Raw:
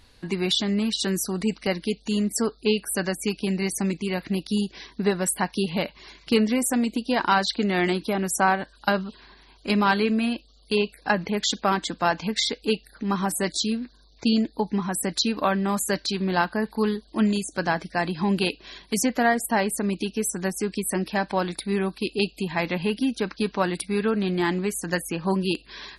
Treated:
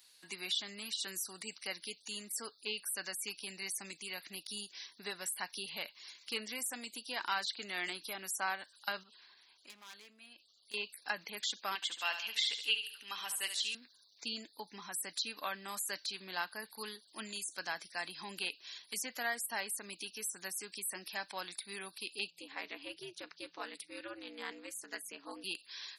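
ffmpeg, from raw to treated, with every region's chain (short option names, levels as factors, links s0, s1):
-filter_complex "[0:a]asettb=1/sr,asplit=3[s0][s1][s2];[s0]atrim=end=9.034[s3];[s1]atrim=start=9.03:end=10.74,asetpts=PTS-STARTPTS,afade=t=in:d=0.004:c=qsin,afade=t=out:st=1.706:d=0.004:c=qsin,aeval=exprs='0.141*(abs(mod(val(0)/0.141+3,4)-2)-1)':c=same,highshelf=f=5700:g=-9,acompressor=threshold=0.0158:ratio=16:attack=3.2:release=140:knee=1:detection=peak[s4];[s2]atrim=start=10.736[s5];[s3][s4]acrossfade=d=0.004:c1=hsin:c2=qsin[s6];[s6][s5]acrossfade=d=0.004:c1=qsin:c2=hsin,asettb=1/sr,asplit=3[s7][s8][s9];[s7]atrim=end=11.754[s10];[s8]atrim=start=11.75:end=13.75,asetpts=PTS-STARTPTS,afade=t=in:d=0.004:c=qsin,afade=t=out:st=1.996:d=0.004:c=qsin,highpass=f=740:p=1,equalizer=f=2900:t=o:w=0.44:g=13.5,aecho=1:1:72|144|216|288:0.316|0.13|0.0532|0.0218,atrim=end_sample=88200[s11];[s9]atrim=start=13.746[s12];[s10][s11]acrossfade=d=0.004:c1=hsin:c2=qsin[s13];[s13][s12]acrossfade=d=0.004:c1=qsin:c2=hsin,asettb=1/sr,asplit=3[s14][s15][s16];[s14]atrim=end=22.304[s17];[s15]atrim=start=22.3:end=25.44,asetpts=PTS-STARTPTS,afade=t=in:d=0.004:c=qsin,afade=t=out:st=3.136:d=0.004:c=qsin,aemphasis=mode=reproduction:type=bsi,aeval=exprs='val(0)*sin(2*PI*120*n/s)':c=same,highpass=210[s18];[s16]atrim=start=25.436[s19];[s17][s18]acrossfade=d=0.004:c1=hsin:c2=qsin[s20];[s20][s19]acrossfade=d=0.004:c1=qsin:c2=hsin,highpass=61,acrossover=split=3200[s21][s22];[s22]acompressor=threshold=0.0112:ratio=4:attack=1:release=60[s23];[s21][s23]amix=inputs=2:normalize=0,aderivative,volume=1.12"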